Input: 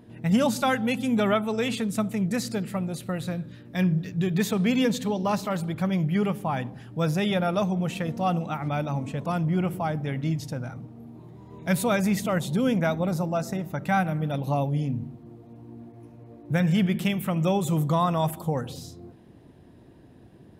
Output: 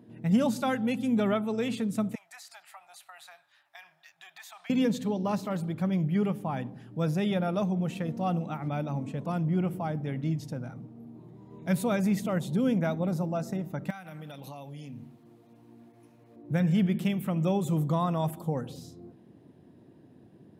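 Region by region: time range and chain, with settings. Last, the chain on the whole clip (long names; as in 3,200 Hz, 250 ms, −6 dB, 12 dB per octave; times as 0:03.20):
0:02.15–0:04.70: elliptic high-pass filter 730 Hz + downward compressor 4 to 1, threshold −37 dBFS
0:13.90–0:16.36: tilt shelving filter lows −9 dB, about 880 Hz + downward compressor 8 to 1, threshold −34 dBFS
whole clip: high-pass filter 150 Hz 12 dB per octave; low-shelf EQ 480 Hz +8.5 dB; level −8 dB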